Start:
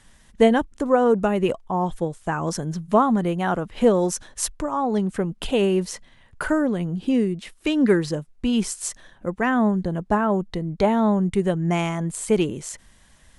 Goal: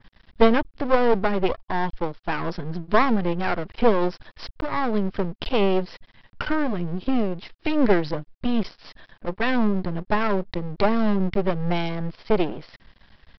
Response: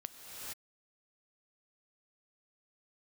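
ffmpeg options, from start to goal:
-af "adynamicequalizer=threshold=0.00501:dfrequency=4000:dqfactor=1:tfrequency=4000:tqfactor=1:attack=5:release=100:ratio=0.375:range=1.5:mode=cutabove:tftype=bell,aresample=11025,aeval=exprs='max(val(0),0)':c=same,aresample=44100,volume=1.58"

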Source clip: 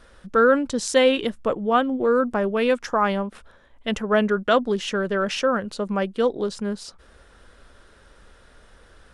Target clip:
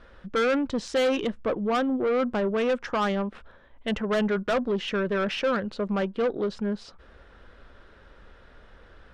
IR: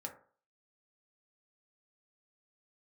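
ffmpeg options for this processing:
-filter_complex "[0:a]lowpass=3300,asoftclip=type=tanh:threshold=0.0944,asplit=2[s0][s1];[1:a]atrim=start_sample=2205,asetrate=83790,aresample=44100,lowpass=f=1400:w=0.5412,lowpass=f=1400:w=1.3066[s2];[s1][s2]afir=irnorm=-1:irlink=0,volume=0.178[s3];[s0][s3]amix=inputs=2:normalize=0"

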